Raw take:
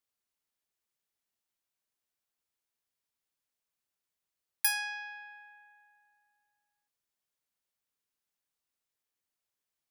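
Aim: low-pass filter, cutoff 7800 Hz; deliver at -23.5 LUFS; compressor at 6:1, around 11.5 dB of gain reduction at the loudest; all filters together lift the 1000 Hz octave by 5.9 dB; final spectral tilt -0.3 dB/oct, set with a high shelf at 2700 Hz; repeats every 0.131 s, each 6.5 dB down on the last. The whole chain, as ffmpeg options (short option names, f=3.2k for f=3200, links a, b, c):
-af "lowpass=7.8k,equalizer=f=1k:t=o:g=8.5,highshelf=f=2.7k:g=-7,acompressor=threshold=-41dB:ratio=6,aecho=1:1:131|262|393|524|655|786:0.473|0.222|0.105|0.0491|0.0231|0.0109,volume=23.5dB"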